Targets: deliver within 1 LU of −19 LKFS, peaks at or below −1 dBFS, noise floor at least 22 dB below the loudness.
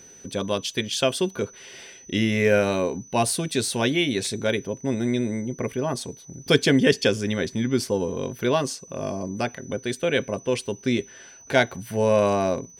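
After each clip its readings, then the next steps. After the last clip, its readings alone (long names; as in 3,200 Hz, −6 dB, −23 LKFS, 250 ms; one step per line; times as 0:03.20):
crackle rate 26 per second; interfering tone 6,000 Hz; level of the tone −46 dBFS; integrated loudness −24.5 LKFS; sample peak −3.0 dBFS; target loudness −19.0 LKFS
→ click removal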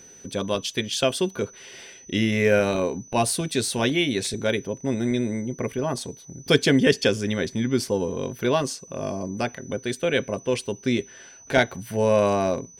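crackle rate 0.23 per second; interfering tone 6,000 Hz; level of the tone −46 dBFS
→ notch filter 6,000 Hz, Q 30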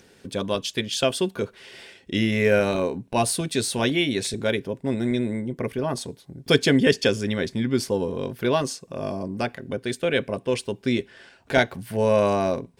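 interfering tone none found; integrated loudness −24.5 LKFS; sample peak −3.0 dBFS; target loudness −19.0 LKFS
→ level +5.5 dB
brickwall limiter −1 dBFS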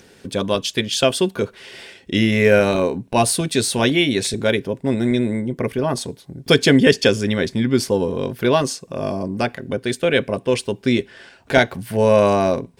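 integrated loudness −19.0 LKFS; sample peak −1.0 dBFS; background noise floor −50 dBFS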